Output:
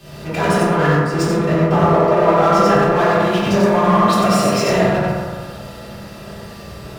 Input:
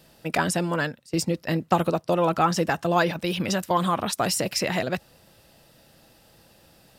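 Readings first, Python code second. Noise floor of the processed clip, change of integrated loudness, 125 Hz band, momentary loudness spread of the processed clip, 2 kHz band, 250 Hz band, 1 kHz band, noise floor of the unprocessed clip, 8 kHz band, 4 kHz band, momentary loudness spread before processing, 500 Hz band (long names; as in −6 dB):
−35 dBFS, +10.0 dB, +11.0 dB, 21 LU, +7.5 dB, +10.5 dB, +9.5 dB, −57 dBFS, +1.5 dB, +4.0 dB, 5 LU, +11.5 dB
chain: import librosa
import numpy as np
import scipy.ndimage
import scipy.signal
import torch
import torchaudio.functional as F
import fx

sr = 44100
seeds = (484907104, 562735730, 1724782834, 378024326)

y = x + 10.0 ** (-4.5 / 20.0) * np.pad(x, (int(94 * sr / 1000.0), 0))[:len(x)]
y = fx.power_curve(y, sr, exponent=0.35)
y = fx.lowpass(y, sr, hz=2500.0, slope=6)
y = fx.rev_fdn(y, sr, rt60_s=2.3, lf_ratio=0.7, hf_ratio=0.25, size_ms=15.0, drr_db=-9.0)
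y = fx.band_widen(y, sr, depth_pct=70)
y = y * 10.0 ** (-9.0 / 20.0)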